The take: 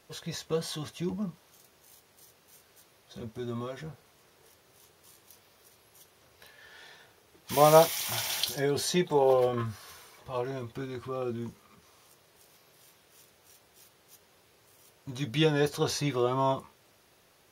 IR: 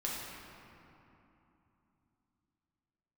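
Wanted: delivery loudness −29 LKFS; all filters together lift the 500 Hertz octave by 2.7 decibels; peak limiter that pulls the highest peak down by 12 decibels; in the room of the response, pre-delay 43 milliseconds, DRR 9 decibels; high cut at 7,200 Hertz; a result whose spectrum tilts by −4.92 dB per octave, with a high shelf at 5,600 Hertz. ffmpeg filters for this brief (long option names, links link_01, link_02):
-filter_complex "[0:a]lowpass=7200,equalizer=frequency=500:width_type=o:gain=3.5,highshelf=frequency=5600:gain=-7.5,alimiter=limit=-18.5dB:level=0:latency=1,asplit=2[link_01][link_02];[1:a]atrim=start_sample=2205,adelay=43[link_03];[link_02][link_03]afir=irnorm=-1:irlink=0,volume=-12.5dB[link_04];[link_01][link_04]amix=inputs=2:normalize=0,volume=2.5dB"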